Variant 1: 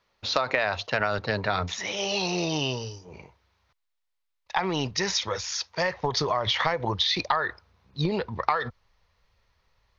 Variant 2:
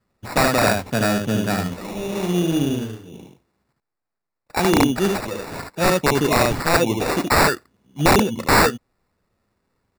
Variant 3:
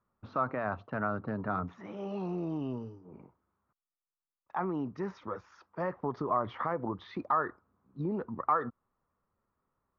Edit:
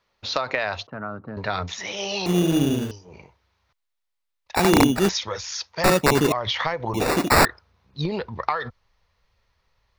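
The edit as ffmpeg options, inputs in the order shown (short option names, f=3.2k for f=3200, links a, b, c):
-filter_complex "[1:a]asplit=4[a][b][c][d];[0:a]asplit=6[e][f][g][h][i][j];[e]atrim=end=0.872[k];[2:a]atrim=start=0.868:end=1.372[l];[f]atrim=start=1.368:end=2.262[m];[a]atrim=start=2.258:end=2.912[n];[g]atrim=start=2.908:end=4.552[o];[b]atrim=start=4.548:end=5.092[p];[h]atrim=start=5.088:end=5.842[q];[c]atrim=start=5.838:end=6.322[r];[i]atrim=start=6.318:end=6.942[s];[d]atrim=start=6.938:end=7.452[t];[j]atrim=start=7.448[u];[k][l]acrossfade=d=0.004:c1=hsin:c2=hsin[v];[v][m]acrossfade=d=0.004:c1=hsin:c2=hsin[w];[w][n]acrossfade=d=0.004:c1=hsin:c2=hsin[x];[x][o]acrossfade=d=0.004:c1=hsin:c2=hsin[y];[y][p]acrossfade=d=0.004:c1=hsin:c2=hsin[z];[z][q]acrossfade=d=0.004:c1=hsin:c2=hsin[aa];[aa][r]acrossfade=d=0.004:c1=hsin:c2=hsin[ab];[ab][s]acrossfade=d=0.004:c1=hsin:c2=hsin[ac];[ac][t]acrossfade=d=0.004:c1=hsin:c2=hsin[ad];[ad][u]acrossfade=d=0.004:c1=hsin:c2=hsin"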